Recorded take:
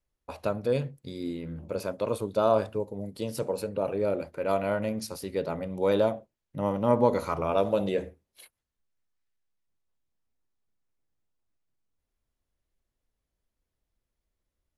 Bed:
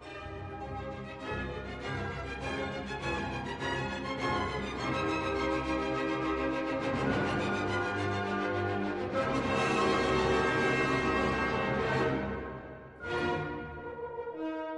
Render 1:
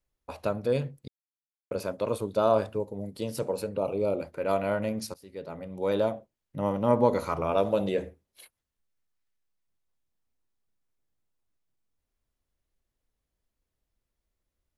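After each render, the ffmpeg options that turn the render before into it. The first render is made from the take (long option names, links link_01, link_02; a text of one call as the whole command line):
ffmpeg -i in.wav -filter_complex "[0:a]asettb=1/sr,asplit=3[link_01][link_02][link_03];[link_01]atrim=end=3.794[link_04];[link_02]atrim=start=3.79:end=4.21,asetpts=PTS-STARTPTS,afade=type=in:duration=0.004:curve=qsin,afade=type=out:start_time=0.416:duration=0.004:curve=qsin,asuperstop=centerf=1700:order=4:qfactor=1.9[link_05];[link_03]atrim=start=4.206[link_06];[link_04][link_05]acrossfade=duration=0.004:curve1=hsin:curve2=qsin[link_07];[link_07][link_06]acrossfade=duration=0.004:curve1=qsin:curve2=hsin,asplit=4[link_08][link_09][link_10][link_11];[link_08]atrim=end=1.08,asetpts=PTS-STARTPTS,afade=type=out:start_time=1.076:duration=0.004:curve=hsin[link_12];[link_09]atrim=start=1.08:end=1.71,asetpts=PTS-STARTPTS,volume=0[link_13];[link_10]atrim=start=1.71:end=5.14,asetpts=PTS-STARTPTS,afade=type=in:duration=0.004:curve=hsin,afade=type=out:start_time=3.426:duration=0.004:curve=hsin:silence=0.112202[link_14];[link_11]atrim=start=5.14,asetpts=PTS-STARTPTS,afade=type=in:duration=1.6:curve=qsin:silence=0.112202[link_15];[link_12][link_13][link_14][link_15]concat=n=4:v=0:a=1" out.wav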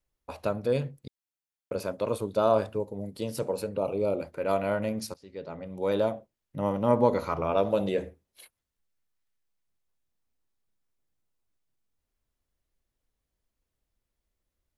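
ffmpeg -i in.wav -filter_complex "[0:a]asplit=3[link_01][link_02][link_03];[link_01]afade=type=out:start_time=5.15:duration=0.02[link_04];[link_02]lowpass=frequency=6700:width=0.5412,lowpass=frequency=6700:width=1.3066,afade=type=in:start_time=5.15:duration=0.02,afade=type=out:start_time=5.64:duration=0.02[link_05];[link_03]afade=type=in:start_time=5.64:duration=0.02[link_06];[link_04][link_05][link_06]amix=inputs=3:normalize=0,asettb=1/sr,asplit=3[link_07][link_08][link_09];[link_07]atrim=end=7.134[link_10];[link_08]atrim=start=7.13:end=7.7,asetpts=PTS-STARTPTS,afade=type=in:duration=0.004:curve=qsin,afade=type=out:start_time=0.566:duration=0.004:curve=qsin,equalizer=frequency=8800:width_type=o:width=0.55:gain=-14[link_11];[link_09]atrim=start=7.696[link_12];[link_10][link_11]acrossfade=duration=0.004:curve1=hsin:curve2=qsin[link_13];[link_13][link_12]acrossfade=duration=0.004:curve1=qsin:curve2=hsin" out.wav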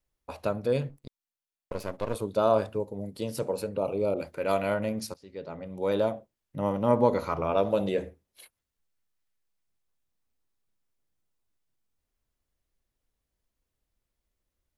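ffmpeg -i in.wav -filter_complex "[0:a]asettb=1/sr,asplit=3[link_01][link_02][link_03];[link_01]atrim=end=0.894[link_04];[link_02]atrim=start=0.89:end=2.15,asetpts=PTS-STARTPTS,afade=type=in:duration=0.004:curve=qsin,afade=type=out:start_time=1.256:duration=0.004:curve=qsin,aeval=exprs='if(lt(val(0),0),0.251*val(0),val(0))':channel_layout=same[link_05];[link_03]atrim=start=2.146[link_06];[link_04][link_05]acrossfade=duration=0.004:curve1=hsin:curve2=qsin[link_07];[link_07][link_06]acrossfade=duration=0.004:curve1=qsin:curve2=hsin,asettb=1/sr,asplit=3[link_08][link_09][link_10];[link_08]atrim=end=4.144[link_11];[link_09]atrim=start=4.14:end=4.74,asetpts=PTS-STARTPTS,afade=type=in:duration=0.004:curve=qsin,afade=type=out:start_time=0.596:duration=0.004:curve=qsin,adynamicequalizer=threshold=0.00708:dfrequency=1700:dqfactor=0.7:tfrequency=1700:tqfactor=0.7:attack=5:release=100:ratio=0.375:range=2.5:mode=boostabove:tftype=highshelf[link_12];[link_10]atrim=start=4.736[link_13];[link_11][link_12]acrossfade=duration=0.004:curve1=hsin:curve2=qsin[link_14];[link_14][link_13]acrossfade=duration=0.004:curve1=qsin:curve2=hsin" out.wav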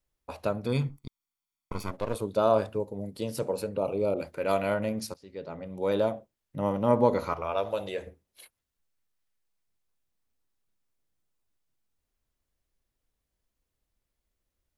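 ffmpeg -i in.wav -filter_complex "[0:a]asettb=1/sr,asplit=3[link_01][link_02][link_03];[link_01]atrim=end=0.664[link_04];[link_02]atrim=start=0.66:end=1.91,asetpts=PTS-STARTPTS,afade=type=in:duration=0.004:curve=qsin,afade=type=out:start_time=1.246:duration=0.004:curve=qsin,aecho=1:1:0.9:0.76,atrim=end_sample=55125[link_05];[link_03]atrim=start=1.906[link_06];[link_04][link_05]acrossfade=duration=0.004:curve1=hsin:curve2=qsin[link_07];[link_07][link_06]acrossfade=duration=0.004:curve1=qsin:curve2=hsin,asettb=1/sr,asplit=3[link_08][link_09][link_10];[link_08]atrim=end=7.334[link_11];[link_09]atrim=start=7.33:end=8.07,asetpts=PTS-STARTPTS,afade=type=in:duration=0.004:curve=qsin,afade=type=out:start_time=0.736:duration=0.004:curve=qsin,equalizer=frequency=210:width=0.65:gain=-13.5[link_12];[link_10]atrim=start=8.066[link_13];[link_11][link_12]acrossfade=duration=0.004:curve1=hsin:curve2=qsin[link_14];[link_14][link_13]acrossfade=duration=0.004:curve1=qsin:curve2=hsin" out.wav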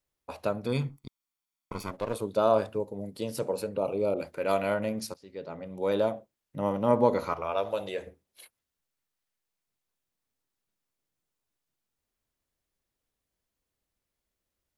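ffmpeg -i in.wav -af "lowshelf=frequency=67:gain=-11.5" out.wav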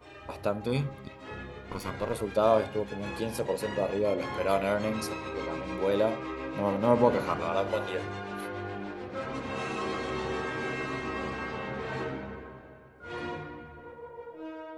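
ffmpeg -i in.wav -i bed.wav -filter_complex "[1:a]volume=-5dB[link_01];[0:a][link_01]amix=inputs=2:normalize=0" out.wav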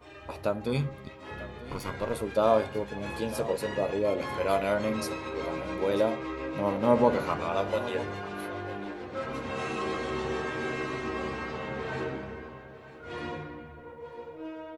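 ffmpeg -i in.wav -filter_complex "[0:a]asplit=2[link_01][link_02];[link_02]adelay=13,volume=-11.5dB[link_03];[link_01][link_03]amix=inputs=2:normalize=0,aecho=1:1:944:0.158" out.wav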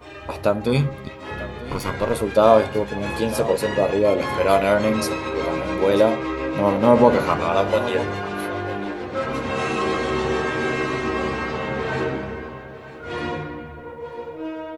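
ffmpeg -i in.wav -af "volume=9.5dB,alimiter=limit=-1dB:level=0:latency=1" out.wav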